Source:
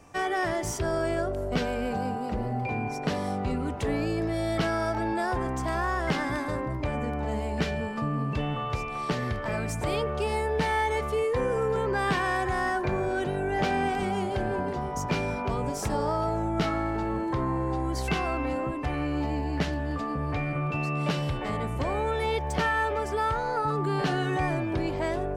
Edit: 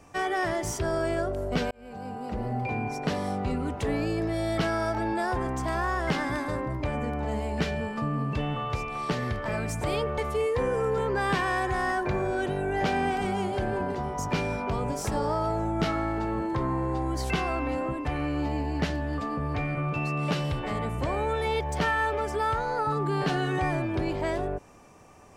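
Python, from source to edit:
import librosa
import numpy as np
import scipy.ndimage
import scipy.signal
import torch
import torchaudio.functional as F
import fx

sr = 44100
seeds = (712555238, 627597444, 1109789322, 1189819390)

y = fx.edit(x, sr, fx.fade_in_span(start_s=1.71, length_s=0.81),
    fx.cut(start_s=10.18, length_s=0.78), tone=tone)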